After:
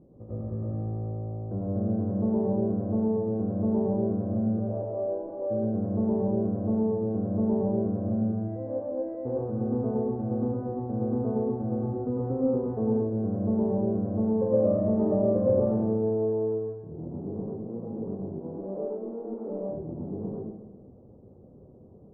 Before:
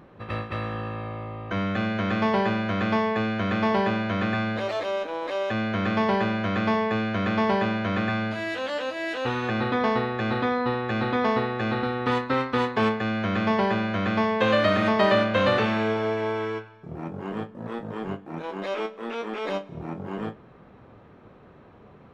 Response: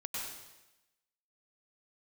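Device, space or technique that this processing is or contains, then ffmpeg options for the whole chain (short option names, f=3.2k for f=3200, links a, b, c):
next room: -filter_complex "[0:a]lowpass=f=540:w=0.5412,lowpass=f=540:w=1.3066[a];[1:a]atrim=start_sample=2205[b];[a][b]afir=irnorm=-1:irlink=0"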